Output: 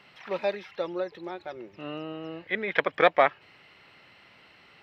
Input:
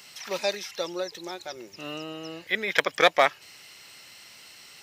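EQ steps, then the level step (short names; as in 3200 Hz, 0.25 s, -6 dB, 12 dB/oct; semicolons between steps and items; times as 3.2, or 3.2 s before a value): air absorption 480 m; +2.0 dB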